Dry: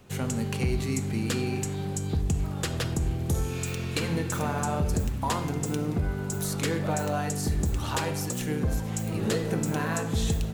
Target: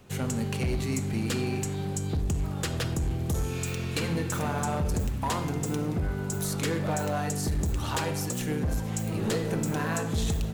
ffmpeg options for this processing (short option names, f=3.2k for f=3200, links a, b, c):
-af "asoftclip=type=hard:threshold=-23dB"